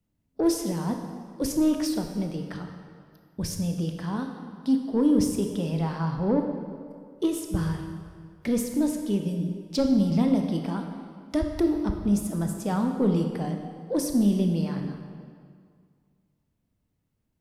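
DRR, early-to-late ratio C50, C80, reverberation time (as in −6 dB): 4.0 dB, 5.0 dB, 6.5 dB, 2.1 s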